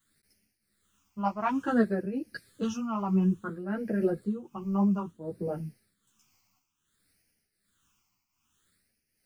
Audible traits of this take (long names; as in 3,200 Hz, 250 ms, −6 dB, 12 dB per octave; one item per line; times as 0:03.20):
a quantiser's noise floor 12 bits, dither none
phaser sweep stages 8, 0.58 Hz, lowest notch 480–1,100 Hz
tremolo triangle 1.3 Hz, depth 75%
a shimmering, thickened sound